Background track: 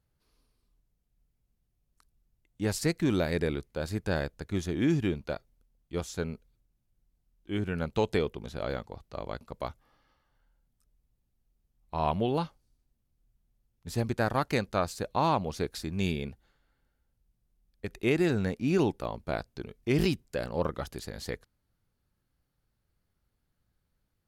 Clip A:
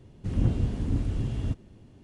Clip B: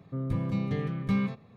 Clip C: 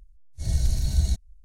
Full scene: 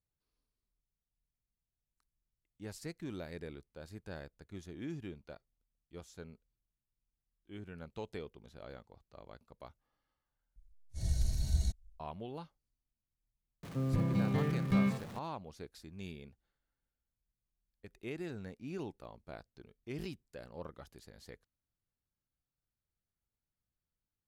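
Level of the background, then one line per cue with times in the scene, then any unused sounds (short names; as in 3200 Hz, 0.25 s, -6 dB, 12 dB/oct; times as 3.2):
background track -16 dB
10.56 replace with C -9 dB
13.63 add B -2.5 dB + zero-crossing step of -41 dBFS
not used: A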